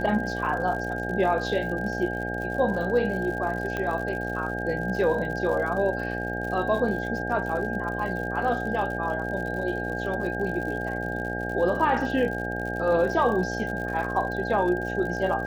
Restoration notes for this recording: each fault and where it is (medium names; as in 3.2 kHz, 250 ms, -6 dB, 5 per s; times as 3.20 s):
buzz 60 Hz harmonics 14 -32 dBFS
crackle 84 per s -34 dBFS
whine 1.6 kHz -32 dBFS
3.77 s: pop -17 dBFS